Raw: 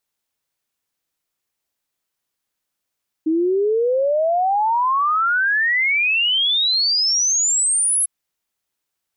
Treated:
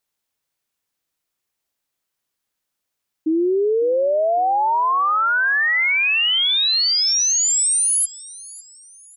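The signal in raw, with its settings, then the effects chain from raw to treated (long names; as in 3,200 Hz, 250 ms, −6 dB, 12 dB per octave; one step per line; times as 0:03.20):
exponential sine sweep 310 Hz → 11,000 Hz 4.80 s −15 dBFS
repeating echo 552 ms, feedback 40%, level −20 dB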